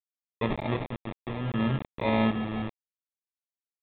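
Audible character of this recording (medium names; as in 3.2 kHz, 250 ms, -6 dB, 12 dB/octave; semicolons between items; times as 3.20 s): aliases and images of a low sample rate 1.5 kHz, jitter 0%; chopped level 0.65 Hz, depth 60%, duty 50%; a quantiser's noise floor 6-bit, dither none; µ-law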